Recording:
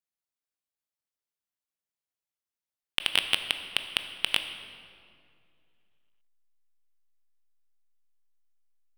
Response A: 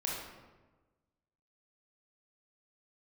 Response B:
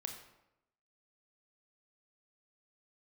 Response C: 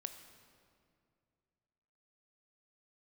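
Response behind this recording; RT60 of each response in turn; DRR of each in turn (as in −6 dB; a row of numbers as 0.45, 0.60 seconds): C; 1.3, 0.85, 2.3 seconds; −4.0, 3.5, 7.5 decibels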